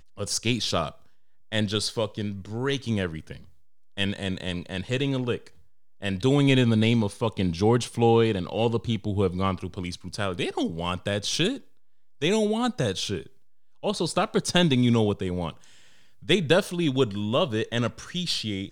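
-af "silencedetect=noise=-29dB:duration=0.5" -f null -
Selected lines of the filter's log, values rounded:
silence_start: 0.88
silence_end: 1.53 | silence_duration: 0.64
silence_start: 3.33
silence_end: 3.98 | silence_duration: 0.66
silence_start: 5.36
silence_end: 6.02 | silence_duration: 0.66
silence_start: 11.56
silence_end: 12.22 | silence_duration: 0.66
silence_start: 13.21
silence_end: 13.84 | silence_duration: 0.63
silence_start: 15.50
silence_end: 16.29 | silence_duration: 0.79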